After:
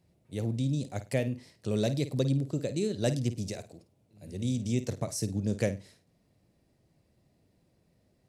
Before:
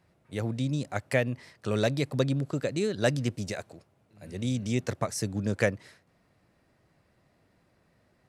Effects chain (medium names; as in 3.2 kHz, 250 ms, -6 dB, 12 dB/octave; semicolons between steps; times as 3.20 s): peaking EQ 1.4 kHz -14 dB 1.7 oct; flutter echo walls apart 8.9 m, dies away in 0.25 s